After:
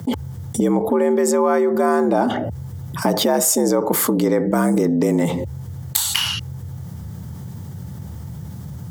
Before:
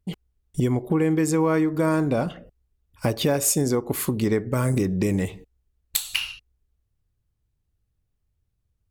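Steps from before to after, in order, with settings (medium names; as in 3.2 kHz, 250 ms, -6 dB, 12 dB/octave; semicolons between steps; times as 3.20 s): graphic EQ with 31 bands 800 Hz +8 dB, 2.5 kHz -12 dB, 4 kHz -5 dB, 10 kHz -4 dB; frequency shift +71 Hz; level flattener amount 70%; trim +2.5 dB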